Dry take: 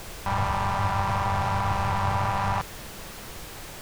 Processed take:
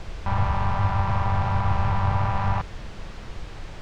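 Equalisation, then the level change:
high-frequency loss of the air 130 metres
low-shelf EQ 110 Hz +11.5 dB
−1.0 dB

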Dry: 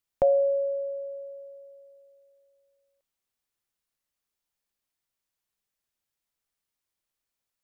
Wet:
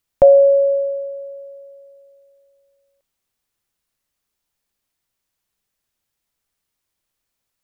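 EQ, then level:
dynamic equaliser 590 Hz, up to +6 dB, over −36 dBFS, Q 5.4
low-shelf EQ 230 Hz +4 dB
+7.5 dB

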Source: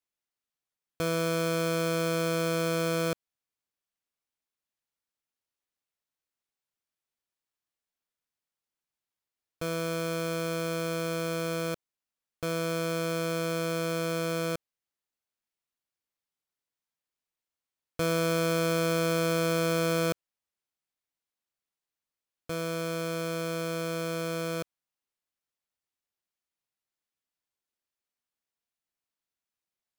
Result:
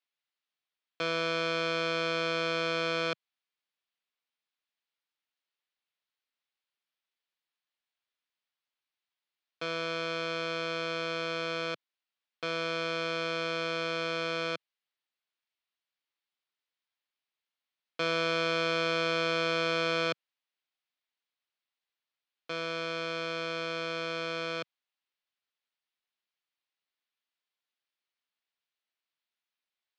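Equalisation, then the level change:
high-pass filter 150 Hz 24 dB per octave
low-pass filter 4,000 Hz 24 dB per octave
spectral tilt +3.5 dB per octave
0.0 dB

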